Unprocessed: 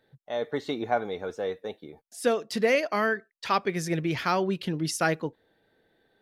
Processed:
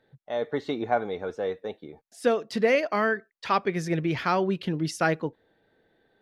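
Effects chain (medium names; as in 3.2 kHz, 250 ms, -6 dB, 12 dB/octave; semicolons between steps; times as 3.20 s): low-pass 3.3 kHz 6 dB/octave; trim +1.5 dB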